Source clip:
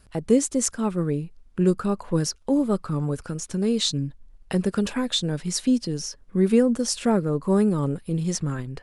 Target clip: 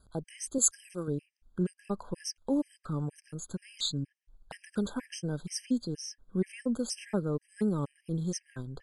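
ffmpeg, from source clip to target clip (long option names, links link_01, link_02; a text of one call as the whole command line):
ffmpeg -i in.wav -filter_complex "[0:a]asettb=1/sr,asplit=3[link_01][link_02][link_03];[link_01]atrim=end=0.584[link_04];[link_02]atrim=start=0.58:end=1.08,asetpts=PTS-STARTPTS,afade=type=in:duration=0.004:curve=qsin,afade=type=out:start_time=0.496:duration=0.004:curve=qsin,bass=frequency=250:gain=-10,treble=frequency=4000:gain=11[link_05];[link_03]atrim=start=1.076[link_06];[link_04][link_05]acrossfade=duration=0.004:curve1=hsin:curve2=qsin[link_07];[link_07][link_06]acrossfade=duration=0.004:curve1=qsin:curve2=hsin,afftfilt=real='re*gt(sin(2*PI*2.1*pts/sr)*(1-2*mod(floor(b*sr/1024/1600),2)),0)':imag='im*gt(sin(2*PI*2.1*pts/sr)*(1-2*mod(floor(b*sr/1024/1600),2)),0)':win_size=1024:overlap=0.75,volume=-7dB" out.wav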